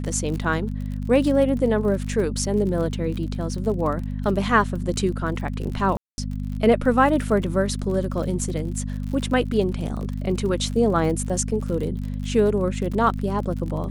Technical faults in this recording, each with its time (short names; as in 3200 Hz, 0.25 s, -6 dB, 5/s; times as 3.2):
crackle 45/s -30 dBFS
hum 50 Hz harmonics 5 -28 dBFS
5.97–6.18 gap 0.21 s